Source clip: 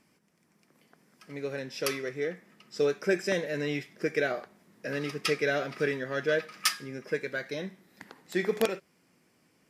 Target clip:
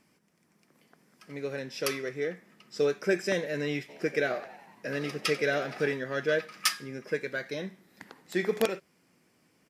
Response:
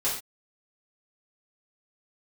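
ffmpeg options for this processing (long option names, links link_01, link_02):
-filter_complex "[0:a]asplit=3[link_01][link_02][link_03];[link_01]afade=type=out:start_time=3.88:duration=0.02[link_04];[link_02]asplit=7[link_05][link_06][link_07][link_08][link_09][link_10][link_11];[link_06]adelay=92,afreqshift=70,volume=-17dB[link_12];[link_07]adelay=184,afreqshift=140,volume=-20.9dB[link_13];[link_08]adelay=276,afreqshift=210,volume=-24.8dB[link_14];[link_09]adelay=368,afreqshift=280,volume=-28.6dB[link_15];[link_10]adelay=460,afreqshift=350,volume=-32.5dB[link_16];[link_11]adelay=552,afreqshift=420,volume=-36.4dB[link_17];[link_05][link_12][link_13][link_14][link_15][link_16][link_17]amix=inputs=7:normalize=0,afade=type=in:start_time=3.88:duration=0.02,afade=type=out:start_time=5.92:duration=0.02[link_18];[link_03]afade=type=in:start_time=5.92:duration=0.02[link_19];[link_04][link_18][link_19]amix=inputs=3:normalize=0"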